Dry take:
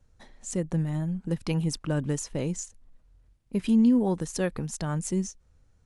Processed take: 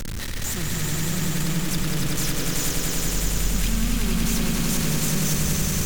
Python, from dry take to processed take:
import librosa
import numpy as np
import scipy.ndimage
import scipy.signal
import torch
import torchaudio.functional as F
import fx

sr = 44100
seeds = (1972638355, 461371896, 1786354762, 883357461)

p1 = np.sign(x) * np.sqrt(np.mean(np.square(x)))
p2 = fx.peak_eq(p1, sr, hz=740.0, db=-13.0, octaves=1.4)
p3 = p2 + fx.echo_swell(p2, sr, ms=94, loudest=5, wet_db=-4, dry=0)
y = np.repeat(p3[::2], 2)[:len(p3)]